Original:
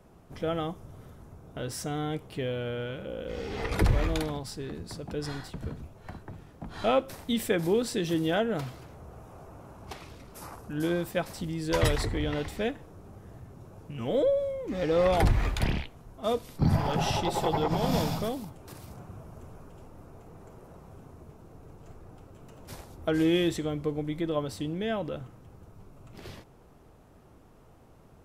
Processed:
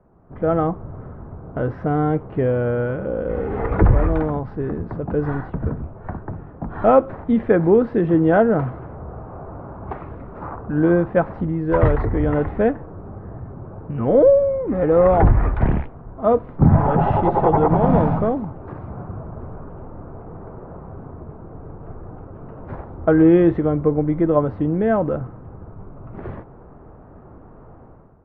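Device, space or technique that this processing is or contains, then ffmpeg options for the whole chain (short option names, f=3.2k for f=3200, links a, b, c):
action camera in a waterproof case: -af "lowpass=f=1.5k:w=0.5412,lowpass=f=1.5k:w=1.3066,dynaudnorm=f=110:g=7:m=13dB" -ar 48000 -c:a aac -b:a 64k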